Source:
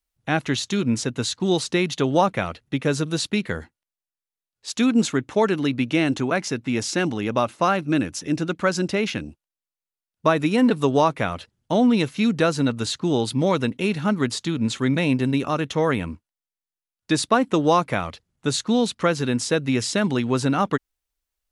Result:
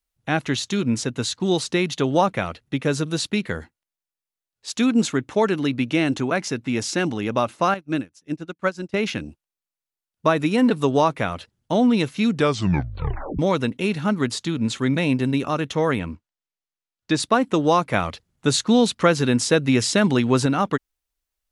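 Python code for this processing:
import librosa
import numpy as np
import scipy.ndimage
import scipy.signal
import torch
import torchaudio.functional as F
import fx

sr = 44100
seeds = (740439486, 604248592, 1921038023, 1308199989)

y = fx.upward_expand(x, sr, threshold_db=-36.0, expansion=2.5, at=(7.74, 8.94))
y = fx.lowpass(y, sr, hz=6600.0, slope=12, at=(15.99, 17.2))
y = fx.edit(y, sr, fx.tape_stop(start_s=12.35, length_s=1.04),
    fx.clip_gain(start_s=17.94, length_s=2.52, db=3.5), tone=tone)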